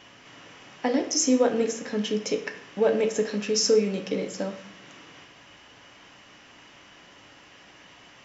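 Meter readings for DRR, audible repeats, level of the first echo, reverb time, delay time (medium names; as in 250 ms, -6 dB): 4.5 dB, no echo, no echo, 0.65 s, no echo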